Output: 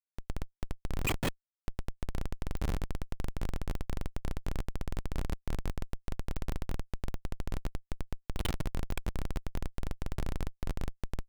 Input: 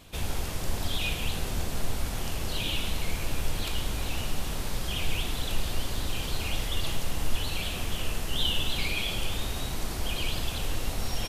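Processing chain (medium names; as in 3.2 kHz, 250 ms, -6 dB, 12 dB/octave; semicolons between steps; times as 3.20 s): 1.07–1.64 s: formants replaced by sine waves; Schmitt trigger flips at -22.5 dBFS; clicks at 2.57/6.36/8.91 s, -25 dBFS; trim -2.5 dB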